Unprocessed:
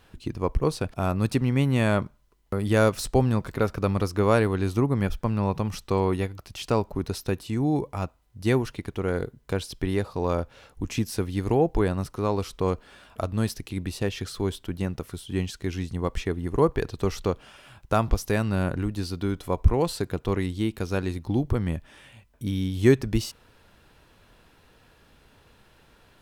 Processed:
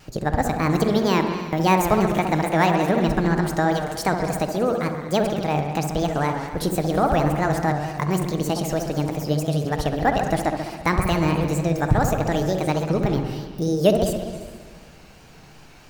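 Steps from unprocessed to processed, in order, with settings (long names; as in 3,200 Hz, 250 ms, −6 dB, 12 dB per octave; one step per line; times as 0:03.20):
in parallel at +2 dB: downward compressor, threshold −35 dBFS, peak gain reduction 22 dB
on the sum: echo whose low-pass opens from repeat to repeat 110 ms, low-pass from 750 Hz, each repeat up 1 octave, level −6 dB
tape wow and flutter 72 cents
change of speed 1.65×
convolution reverb RT60 1.4 s, pre-delay 6 ms, DRR 10 dB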